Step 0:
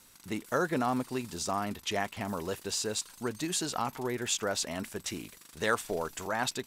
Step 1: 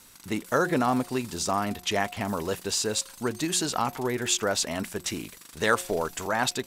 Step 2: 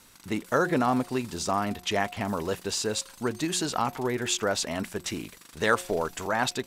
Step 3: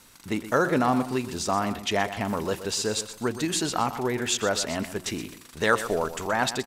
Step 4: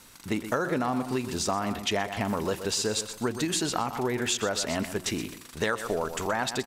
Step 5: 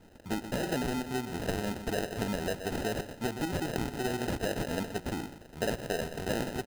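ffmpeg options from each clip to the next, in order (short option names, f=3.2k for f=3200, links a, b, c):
-af "bandreject=f=179.4:t=h:w=4,bandreject=f=358.8:t=h:w=4,bandreject=f=538.2:t=h:w=4,bandreject=f=717.6:t=h:w=4,volume=5.5dB"
-af "highshelf=f=5.7k:g=-5.5"
-af "aecho=1:1:123|246|369:0.237|0.0617|0.016,volume=1.5dB"
-af "acompressor=threshold=-25dB:ratio=10,volume=1.5dB"
-af "acrusher=samples=39:mix=1:aa=0.000001,volume=-4dB"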